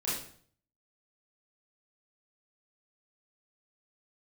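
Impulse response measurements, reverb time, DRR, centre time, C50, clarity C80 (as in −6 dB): 0.55 s, −9.0 dB, 54 ms, 1.5 dB, 6.5 dB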